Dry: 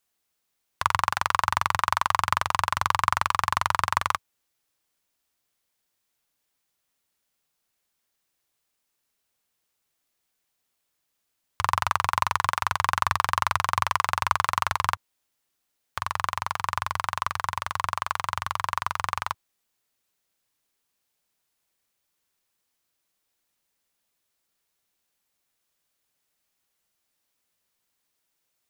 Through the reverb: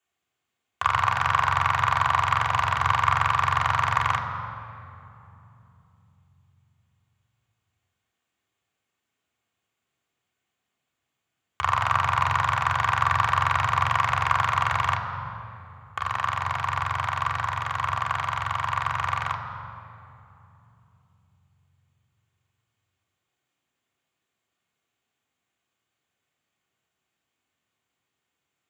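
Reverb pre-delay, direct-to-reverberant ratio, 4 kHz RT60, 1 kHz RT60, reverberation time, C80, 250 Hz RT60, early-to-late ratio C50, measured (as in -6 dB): 3 ms, -2.5 dB, 1.8 s, 2.6 s, 2.9 s, 7.0 dB, 4.5 s, 6.0 dB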